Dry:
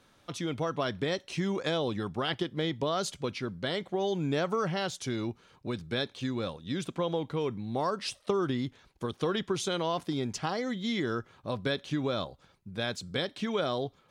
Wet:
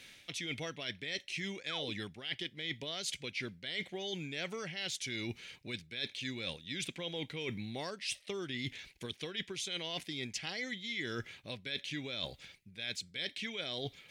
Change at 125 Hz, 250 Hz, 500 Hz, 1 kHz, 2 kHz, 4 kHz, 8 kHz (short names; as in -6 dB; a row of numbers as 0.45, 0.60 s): -10.5, -11.5, -12.5, -15.5, -1.5, -1.0, -1.5 dB